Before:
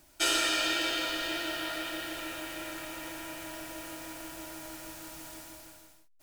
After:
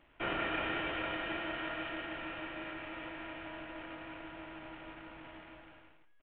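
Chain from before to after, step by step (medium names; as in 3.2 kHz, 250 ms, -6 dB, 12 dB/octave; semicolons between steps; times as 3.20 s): CVSD coder 16 kbps; delay 89 ms -13.5 dB; trim -2.5 dB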